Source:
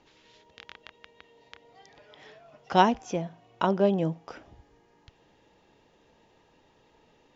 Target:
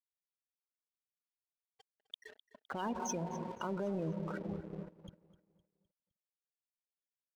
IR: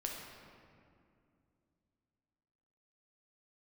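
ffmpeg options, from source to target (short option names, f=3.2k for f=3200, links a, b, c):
-filter_complex "[0:a]equalizer=f=720:w=4.8:g=-5,dynaudnorm=f=190:g=9:m=7dB,asplit=2[a][b];[1:a]atrim=start_sample=2205,asetrate=38367,aresample=44100[c];[b][c]afir=irnorm=-1:irlink=0,volume=-12dB[d];[a][d]amix=inputs=2:normalize=0,aeval=exprs='sgn(val(0))*max(abs(val(0))-0.00422,0)':c=same,alimiter=level_in=7dB:limit=-24dB:level=0:latency=1:release=261,volume=-7dB,afftfilt=real='re*gte(hypot(re,im),0.01)':imag='im*gte(hypot(re,im),0.01)':win_size=1024:overlap=0.75,highpass=f=76:p=1,highshelf=f=2.4k:g=11.5,aeval=exprs='sgn(val(0))*max(abs(val(0))-0.00158,0)':c=same,aecho=1:1:256|512|768|1024:0.126|0.0554|0.0244|0.0107,volume=2dB"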